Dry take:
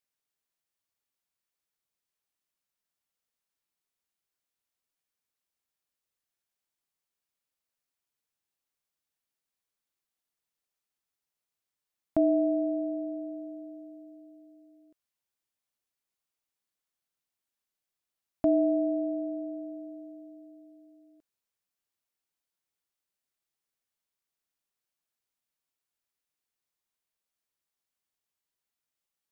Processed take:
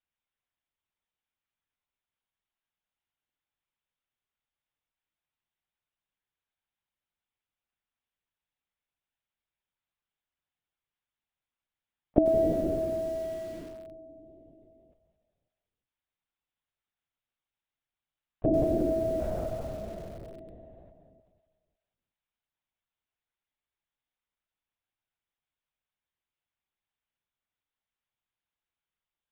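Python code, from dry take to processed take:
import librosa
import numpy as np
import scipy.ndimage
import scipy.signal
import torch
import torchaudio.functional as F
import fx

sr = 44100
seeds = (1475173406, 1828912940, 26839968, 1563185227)

y = scipy.signal.sosfilt(scipy.signal.butter(2, 130.0, 'highpass', fs=sr, output='sos'), x)
y = fx.peak_eq(y, sr, hz=190.0, db=-3.5, octaves=1.3)
y = fx.leveller(y, sr, passes=1, at=(19.21, 20.91))
y = fx.echo_feedback(y, sr, ms=184, feedback_pct=51, wet_db=-11)
y = fx.lpc_vocoder(y, sr, seeds[0], excitation='whisper', order=10)
y = fx.echo_crushed(y, sr, ms=97, feedback_pct=55, bits=7, wet_db=-12.0)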